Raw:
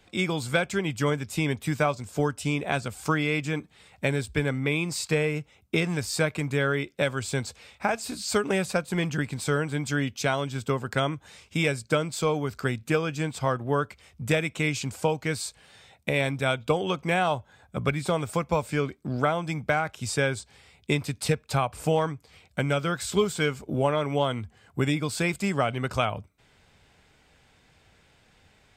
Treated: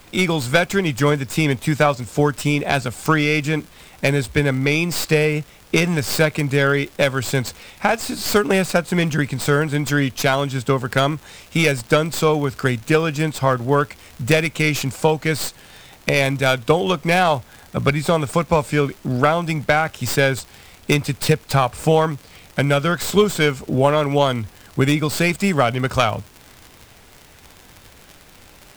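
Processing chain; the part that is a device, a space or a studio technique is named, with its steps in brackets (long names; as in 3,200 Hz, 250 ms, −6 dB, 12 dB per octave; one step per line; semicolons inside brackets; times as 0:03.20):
record under a worn stylus (stylus tracing distortion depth 0.081 ms; surface crackle 83 per second −37 dBFS; pink noise bed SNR 29 dB)
level +8.5 dB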